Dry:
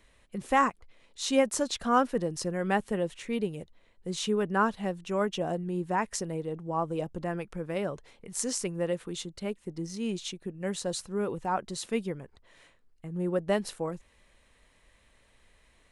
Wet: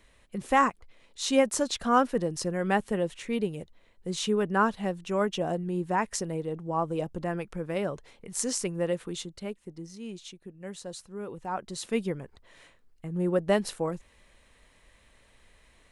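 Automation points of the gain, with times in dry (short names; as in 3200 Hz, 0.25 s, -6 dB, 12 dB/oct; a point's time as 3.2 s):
9.09 s +1.5 dB
9.99 s -7.5 dB
11.2 s -7.5 dB
12.06 s +3 dB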